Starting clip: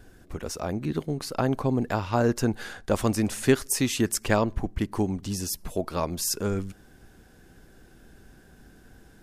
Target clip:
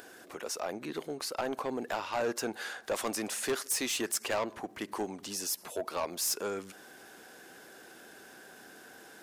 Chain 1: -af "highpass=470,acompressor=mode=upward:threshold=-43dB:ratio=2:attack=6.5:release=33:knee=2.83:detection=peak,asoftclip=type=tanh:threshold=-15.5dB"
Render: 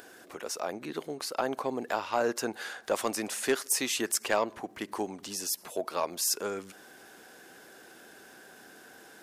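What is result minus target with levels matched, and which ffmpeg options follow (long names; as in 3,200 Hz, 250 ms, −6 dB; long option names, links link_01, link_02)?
soft clipping: distortion −10 dB
-af "highpass=470,acompressor=mode=upward:threshold=-43dB:ratio=2:attack=6.5:release=33:knee=2.83:detection=peak,asoftclip=type=tanh:threshold=-25.5dB"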